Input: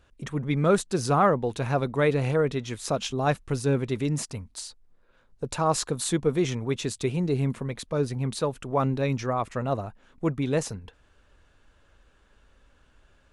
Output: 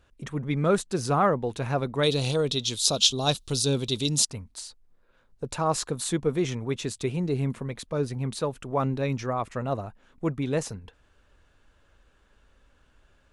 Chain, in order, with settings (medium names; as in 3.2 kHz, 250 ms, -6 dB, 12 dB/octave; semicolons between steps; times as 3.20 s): 2.03–4.25 s: resonant high shelf 2.7 kHz +11.5 dB, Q 3; trim -1.5 dB